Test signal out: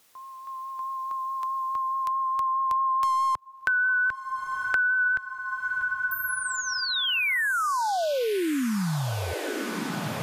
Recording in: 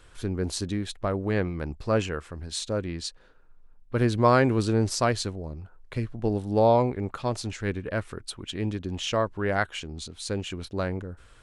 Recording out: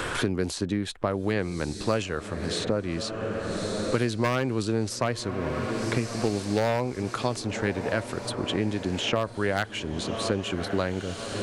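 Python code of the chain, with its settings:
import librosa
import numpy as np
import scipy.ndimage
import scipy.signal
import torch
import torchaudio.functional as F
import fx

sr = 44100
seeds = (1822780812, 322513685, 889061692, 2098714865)

y = np.minimum(x, 2.0 * 10.0 ** (-15.5 / 20.0) - x)
y = fx.low_shelf(y, sr, hz=64.0, db=-11.5)
y = fx.vibrato(y, sr, rate_hz=4.7, depth_cents=18.0)
y = fx.echo_diffused(y, sr, ms=1169, feedback_pct=52, wet_db=-16.0)
y = fx.band_squash(y, sr, depth_pct=100)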